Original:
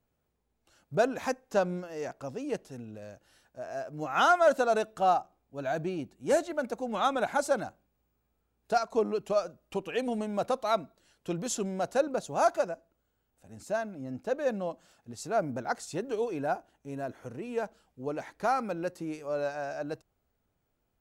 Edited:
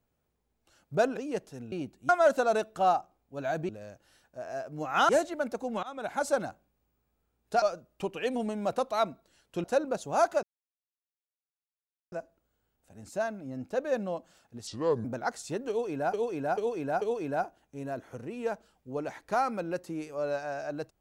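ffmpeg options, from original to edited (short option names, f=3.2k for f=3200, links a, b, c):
-filter_complex "[0:a]asplit=15[a][b][c][d][e][f][g][h][i][j][k][l][m][n][o];[a]atrim=end=1.172[p];[b]atrim=start=2.348:end=2.902[q];[c]atrim=start=5.898:end=6.272[r];[d]atrim=start=4.298:end=5.902[s];[e]atrim=start=2.898:end=4.302[t];[f]atrim=start=6.268:end=7.01,asetpts=PTS-STARTPTS,afade=t=out:st=0.738:d=0.004:c=hsin:silence=0.0707946[u];[g]atrim=start=7.01:end=8.802,asetpts=PTS-STARTPTS,afade=t=in:d=0.48:silence=0.0707946[v];[h]atrim=start=9.338:end=11.362[w];[i]atrim=start=11.868:end=12.66,asetpts=PTS-STARTPTS,afade=t=out:st=0.788:d=0.004:c=hsin,apad=pad_dur=1.69[x];[j]atrim=start=12.66:end=15.214,asetpts=PTS-STARTPTS,afade=t=in:d=0.004:c=hsin[y];[k]atrim=start=15.21:end=15.48,asetpts=PTS-STARTPTS,asetrate=31752,aresample=44100[z];[l]atrim=start=15.476:end=16.572[aa];[m]atrim=start=16.128:end=16.572[ab];[n]atrim=start=16.128:end=16.572[ac];[o]atrim=start=16.128[ad];[p][q]acrossfade=d=0.004:c1=hsin:c2=hsin[ae];[ae][r]acrossfade=d=0.004:c1=hsin:c2=hsin[af];[af][s]acrossfade=d=0.004:c1=hsin:c2=hsin[ag];[ag][t]acrossfade=d=0.004:c1=hsin:c2=hsin[ah];[u][v]concat=n=2:v=0:a=1[ai];[ah][ai]acrossfade=d=0.004:c1=hsin:c2=hsin[aj];[aj][w]acrossfade=d=0.004:c1=hsin:c2=hsin[ak];[x][y]concat=n=2:v=0:a=1[al];[ak][al]acrossfade=d=0.004:c1=hsin:c2=hsin[am];[am][z]acrossfade=d=0.004:c1=hsin:c2=hsin[an];[an][aa]acrossfade=d=0.004:c1=hsin:c2=hsin[ao];[ao][ab]acrossfade=d=0.004:c1=hsin:c2=hsin[ap];[ap][ac]acrossfade=d=0.004:c1=hsin:c2=hsin[aq];[aq][ad]acrossfade=d=0.004:c1=hsin:c2=hsin"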